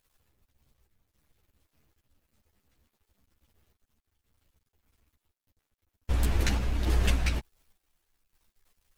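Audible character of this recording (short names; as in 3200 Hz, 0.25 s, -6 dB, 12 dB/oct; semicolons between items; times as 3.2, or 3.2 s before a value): a quantiser's noise floor 12-bit, dither none; random-step tremolo; a shimmering, thickened sound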